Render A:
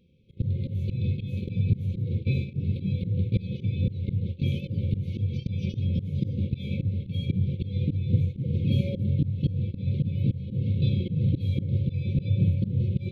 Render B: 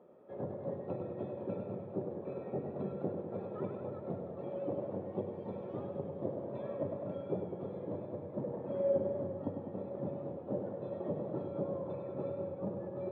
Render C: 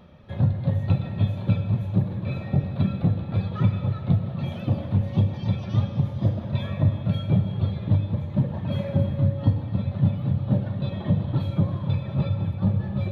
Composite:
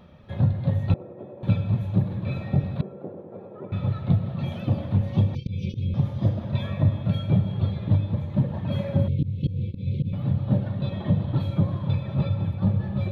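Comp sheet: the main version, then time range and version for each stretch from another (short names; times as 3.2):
C
0.94–1.43 from B
2.81–3.72 from B
5.35–5.94 from A
9.08–10.13 from A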